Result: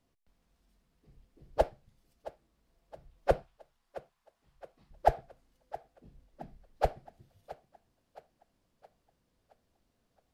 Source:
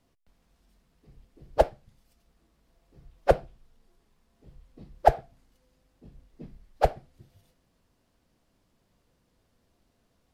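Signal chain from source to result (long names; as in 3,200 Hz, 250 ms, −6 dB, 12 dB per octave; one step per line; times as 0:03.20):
0:03.42–0:04.91: low shelf with overshoot 680 Hz −11.5 dB, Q 1.5
on a send: feedback echo with a high-pass in the loop 669 ms, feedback 49%, high-pass 210 Hz, level −16.5 dB
on the sum: level −6 dB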